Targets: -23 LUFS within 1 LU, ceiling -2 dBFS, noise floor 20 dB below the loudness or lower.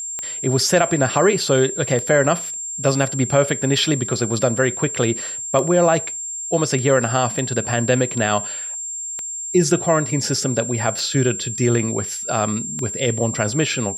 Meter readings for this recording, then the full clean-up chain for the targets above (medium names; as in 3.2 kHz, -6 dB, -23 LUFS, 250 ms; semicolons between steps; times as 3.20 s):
clicks found 8; steady tone 7.4 kHz; tone level -26 dBFS; loudness -19.5 LUFS; peak level -4.0 dBFS; loudness target -23.0 LUFS
-> de-click; band-stop 7.4 kHz, Q 30; trim -3.5 dB